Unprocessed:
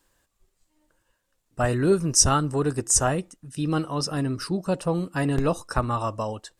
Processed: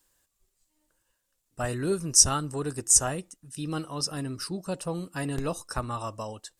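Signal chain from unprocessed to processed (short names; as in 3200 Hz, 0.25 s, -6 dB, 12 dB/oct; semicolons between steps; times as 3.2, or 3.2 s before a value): high shelf 4100 Hz +11 dB; gain -7.5 dB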